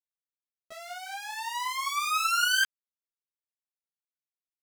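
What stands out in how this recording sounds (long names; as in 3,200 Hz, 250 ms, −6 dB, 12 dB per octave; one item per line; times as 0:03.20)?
a quantiser's noise floor 12 bits, dither none
a shimmering, thickened sound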